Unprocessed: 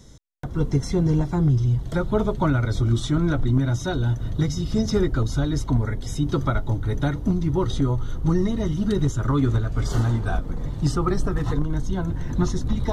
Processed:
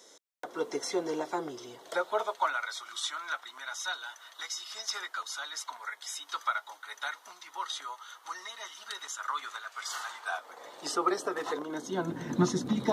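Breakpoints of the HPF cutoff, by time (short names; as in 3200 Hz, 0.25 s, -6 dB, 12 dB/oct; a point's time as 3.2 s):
HPF 24 dB/oct
1.75 s 420 Hz
2.72 s 1000 Hz
10.14 s 1000 Hz
10.99 s 410 Hz
11.59 s 410 Hz
12.22 s 190 Hz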